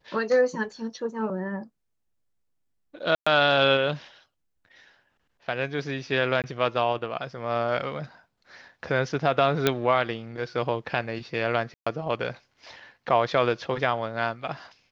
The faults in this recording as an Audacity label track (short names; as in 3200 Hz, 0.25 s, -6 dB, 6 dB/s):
3.150000	3.270000	gap 0.115 s
6.420000	6.440000	gap 18 ms
9.670000	9.670000	pop -6 dBFS
11.740000	11.870000	gap 0.125 s